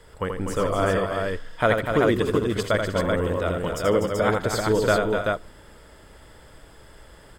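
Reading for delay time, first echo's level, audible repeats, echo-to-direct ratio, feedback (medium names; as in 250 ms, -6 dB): 82 ms, -5.5 dB, 5, 0.0 dB, no regular repeats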